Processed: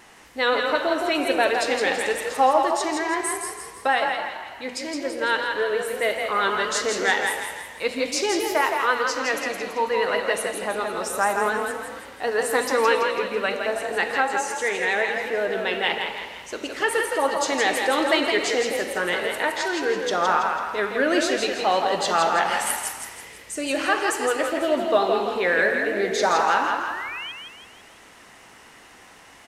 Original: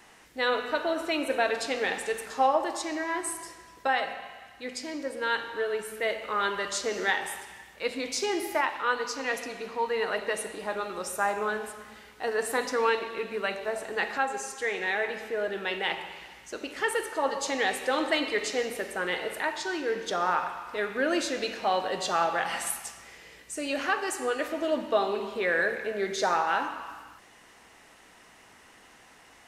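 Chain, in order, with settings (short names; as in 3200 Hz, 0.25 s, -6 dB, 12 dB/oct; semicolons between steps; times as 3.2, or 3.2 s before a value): vibrato 8 Hz 39 cents; painted sound rise, 25.72–27.32, 230–3300 Hz -40 dBFS; frequency-shifting echo 0.165 s, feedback 44%, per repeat +34 Hz, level -5 dB; gain +5 dB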